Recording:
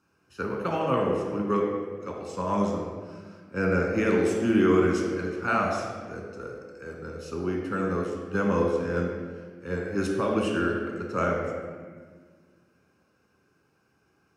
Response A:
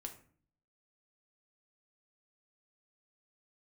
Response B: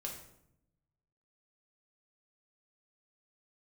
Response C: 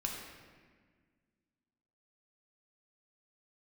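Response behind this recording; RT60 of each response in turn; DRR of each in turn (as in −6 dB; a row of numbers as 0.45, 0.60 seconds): C; 0.50, 0.75, 1.6 seconds; 3.5, −1.0, −0.5 decibels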